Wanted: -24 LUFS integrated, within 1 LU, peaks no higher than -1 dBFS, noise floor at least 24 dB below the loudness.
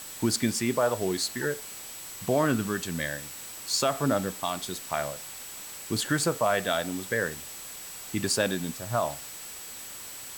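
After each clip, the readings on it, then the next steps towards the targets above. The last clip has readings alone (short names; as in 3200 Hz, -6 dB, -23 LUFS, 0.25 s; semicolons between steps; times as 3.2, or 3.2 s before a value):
steady tone 7800 Hz; tone level -44 dBFS; noise floor -42 dBFS; noise floor target -54 dBFS; loudness -29.5 LUFS; peak -13.5 dBFS; loudness target -24.0 LUFS
-> notch 7800 Hz, Q 30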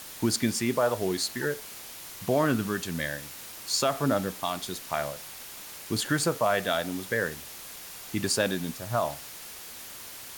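steady tone none; noise floor -43 dBFS; noise floor target -53 dBFS
-> denoiser 10 dB, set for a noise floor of -43 dBFS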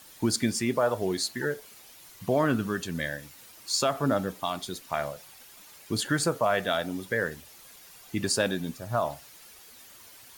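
noise floor -51 dBFS; noise floor target -53 dBFS
-> denoiser 6 dB, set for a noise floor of -51 dBFS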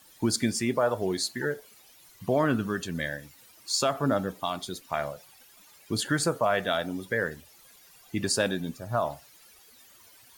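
noise floor -56 dBFS; loudness -29.0 LUFS; peak -14.0 dBFS; loudness target -24.0 LUFS
-> gain +5 dB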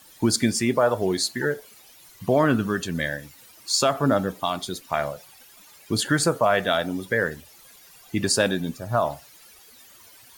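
loudness -24.0 LUFS; peak -9.0 dBFS; noise floor -51 dBFS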